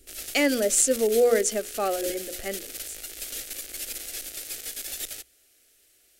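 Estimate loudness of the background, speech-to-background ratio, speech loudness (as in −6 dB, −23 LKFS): −34.0 LKFS, 10.0 dB, −24.0 LKFS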